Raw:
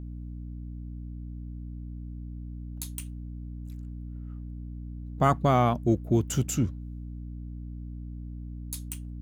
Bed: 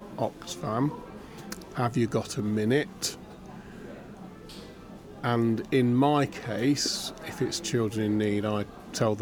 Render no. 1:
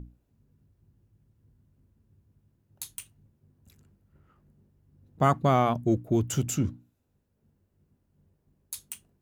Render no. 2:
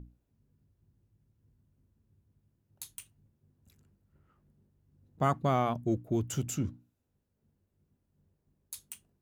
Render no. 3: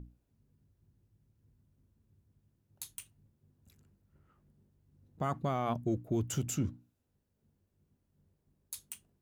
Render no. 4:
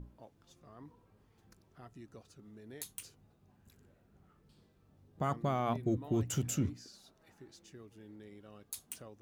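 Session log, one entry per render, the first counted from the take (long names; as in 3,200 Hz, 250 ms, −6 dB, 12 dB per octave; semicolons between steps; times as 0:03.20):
mains-hum notches 60/120/180/240/300 Hz
level −5.5 dB
brickwall limiter −22 dBFS, peak gain reduction 7.5 dB
mix in bed −26.5 dB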